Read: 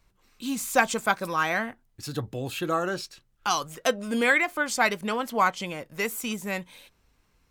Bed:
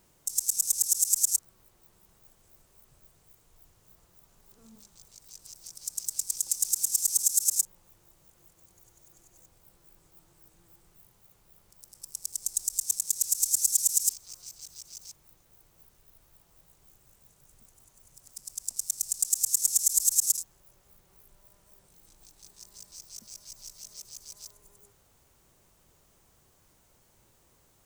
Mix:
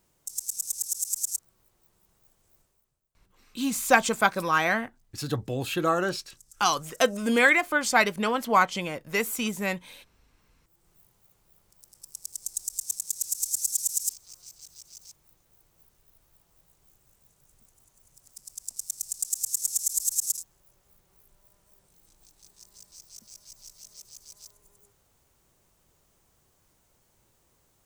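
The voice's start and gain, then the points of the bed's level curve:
3.15 s, +2.0 dB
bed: 0:02.61 −5 dB
0:03.09 −25.5 dB
0:10.25 −25.5 dB
0:10.90 −3 dB

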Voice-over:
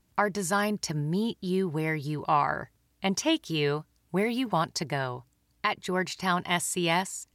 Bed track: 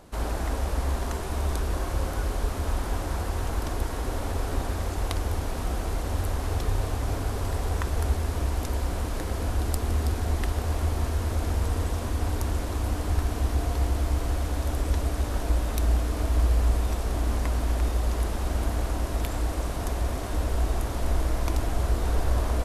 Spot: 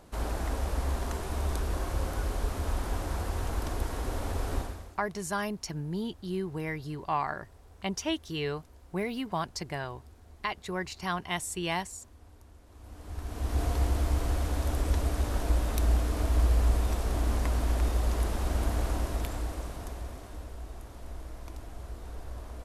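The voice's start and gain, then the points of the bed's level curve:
4.80 s, −5.5 dB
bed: 0:04.58 −3.5 dB
0:05.06 −27 dB
0:12.63 −27 dB
0:13.61 −2 dB
0:18.95 −2 dB
0:20.59 −16.5 dB

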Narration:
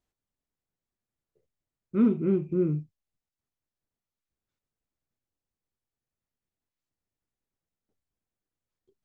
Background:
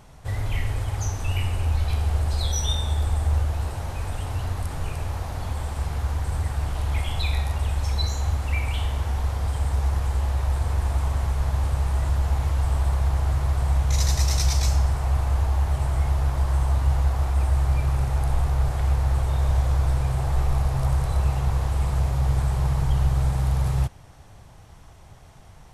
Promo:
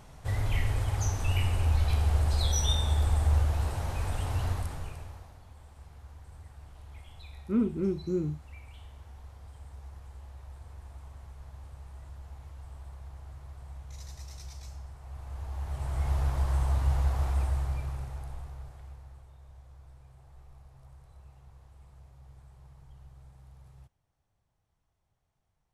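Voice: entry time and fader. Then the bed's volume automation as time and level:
5.55 s, −4.5 dB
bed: 0:04.51 −2.5 dB
0:05.43 −23 dB
0:14.99 −23 dB
0:16.14 −5.5 dB
0:17.32 −5.5 dB
0:19.37 −31 dB

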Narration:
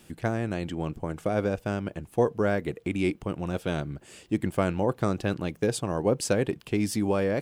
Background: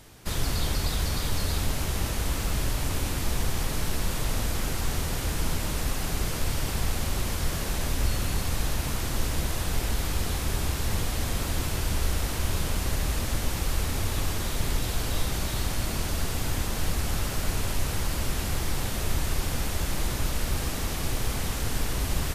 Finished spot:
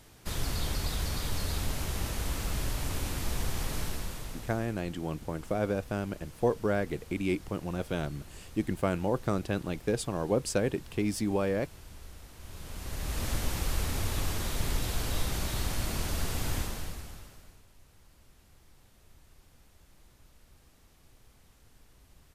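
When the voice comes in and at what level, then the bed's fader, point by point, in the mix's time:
4.25 s, −3.5 dB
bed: 0:03.81 −5 dB
0:04.81 −21.5 dB
0:12.34 −21.5 dB
0:13.26 −3.5 dB
0:16.58 −3.5 dB
0:17.66 −31.5 dB

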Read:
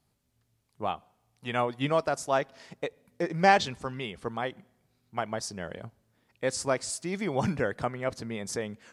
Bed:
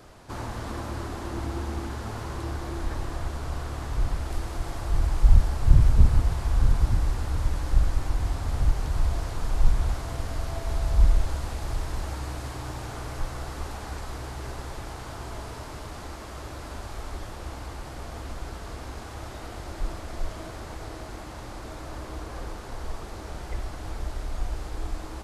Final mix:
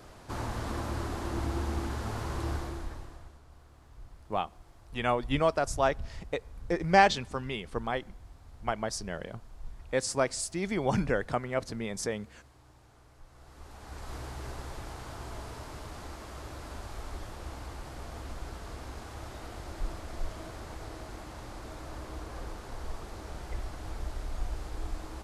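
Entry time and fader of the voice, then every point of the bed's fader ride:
3.50 s, 0.0 dB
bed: 0:02.55 −1 dB
0:03.45 −23.5 dB
0:13.23 −23.5 dB
0:14.14 −4.5 dB

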